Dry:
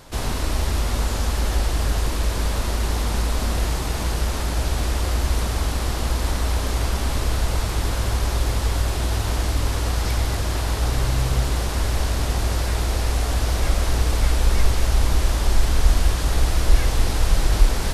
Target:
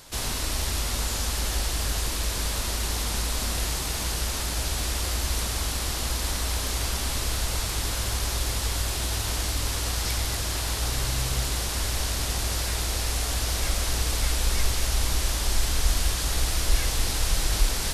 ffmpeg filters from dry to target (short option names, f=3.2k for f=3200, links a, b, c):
-af "highshelf=f=2.1k:g=12,volume=-7.5dB"